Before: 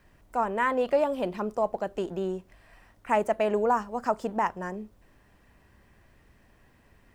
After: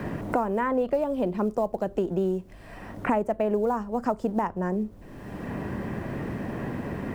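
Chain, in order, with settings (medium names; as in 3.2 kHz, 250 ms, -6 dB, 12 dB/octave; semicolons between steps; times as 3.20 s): short-mantissa float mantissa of 4-bit; tilt shelf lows +7 dB, about 690 Hz; three bands compressed up and down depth 100%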